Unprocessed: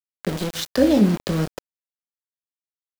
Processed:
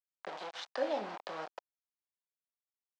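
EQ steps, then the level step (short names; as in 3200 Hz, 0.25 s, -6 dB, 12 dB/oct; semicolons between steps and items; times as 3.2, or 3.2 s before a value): band-pass 790 Hz, Q 2.5; air absorption 150 m; differentiator; +15.5 dB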